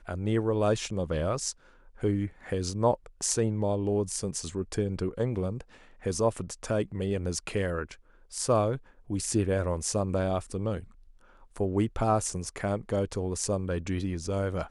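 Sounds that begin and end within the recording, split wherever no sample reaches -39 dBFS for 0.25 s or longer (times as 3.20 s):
2.02–5.61 s
6.04–7.94 s
8.32–8.78 s
9.10–10.84 s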